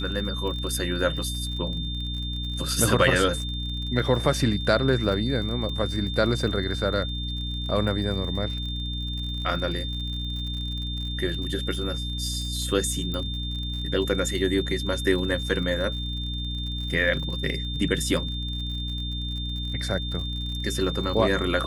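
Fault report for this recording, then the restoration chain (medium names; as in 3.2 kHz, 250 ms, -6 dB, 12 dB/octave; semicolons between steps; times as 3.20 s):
crackle 55 per s -34 dBFS
hum 60 Hz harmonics 5 -31 dBFS
whine 3.6 kHz -33 dBFS
13.14 s: pop -18 dBFS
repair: de-click; band-stop 3.6 kHz, Q 30; de-hum 60 Hz, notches 5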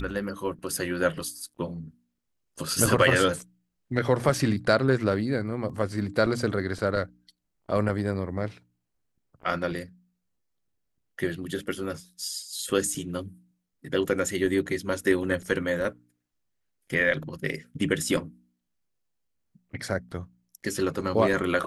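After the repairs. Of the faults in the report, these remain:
nothing left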